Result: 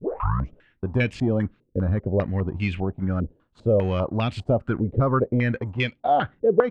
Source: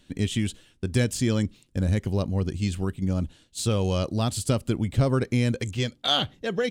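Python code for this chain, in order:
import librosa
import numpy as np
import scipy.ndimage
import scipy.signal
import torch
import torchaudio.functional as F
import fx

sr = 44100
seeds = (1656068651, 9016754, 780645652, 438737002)

y = fx.tape_start_head(x, sr, length_s=0.64)
y = fx.leveller(y, sr, passes=1)
y = fx.filter_held_lowpass(y, sr, hz=5.0, low_hz=460.0, high_hz=2400.0)
y = y * 10.0 ** (-3.0 / 20.0)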